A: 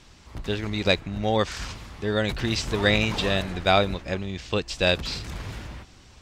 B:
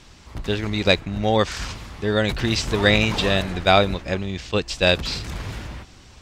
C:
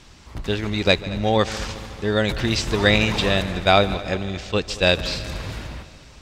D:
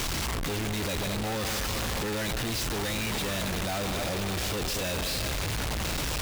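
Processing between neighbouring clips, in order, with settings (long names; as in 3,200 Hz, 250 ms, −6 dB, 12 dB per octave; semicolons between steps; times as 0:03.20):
level that may rise only so fast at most 540 dB per second; level +4 dB
echo machine with several playback heads 73 ms, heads second and third, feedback 61%, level −18.5 dB
sign of each sample alone; level −8 dB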